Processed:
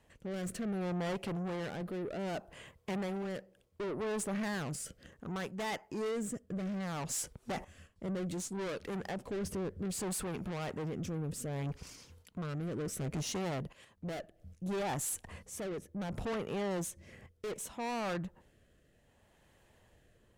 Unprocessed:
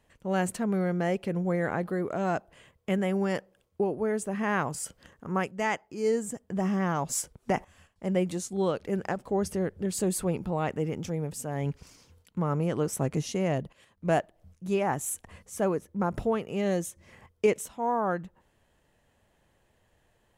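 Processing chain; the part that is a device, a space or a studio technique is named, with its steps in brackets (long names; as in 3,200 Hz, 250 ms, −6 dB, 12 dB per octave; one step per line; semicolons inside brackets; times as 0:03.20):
overdriven rotary cabinet (tube saturation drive 37 dB, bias 0.2; rotating-speaker cabinet horn 0.65 Hz)
level +4 dB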